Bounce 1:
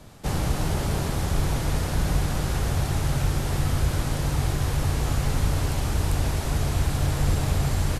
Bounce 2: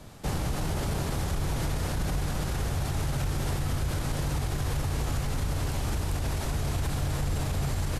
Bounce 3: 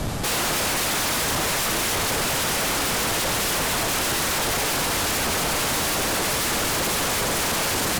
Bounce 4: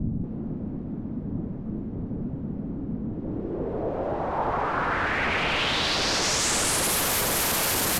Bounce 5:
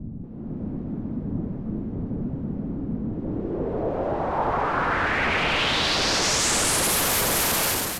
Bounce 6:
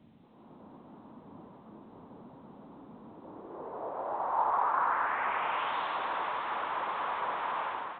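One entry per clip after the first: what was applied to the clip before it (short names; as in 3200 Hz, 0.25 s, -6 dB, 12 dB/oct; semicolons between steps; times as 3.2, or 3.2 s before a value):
limiter -21 dBFS, peak gain reduction 9.5 dB
sine folder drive 18 dB, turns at -20.5 dBFS
low-pass sweep 230 Hz -> 13000 Hz, 3.08–7.03; gain -2.5 dB
AGC gain up to 10 dB; gain -7.5 dB
band-pass 1000 Hz, Q 3.2; A-law 64 kbps 8000 Hz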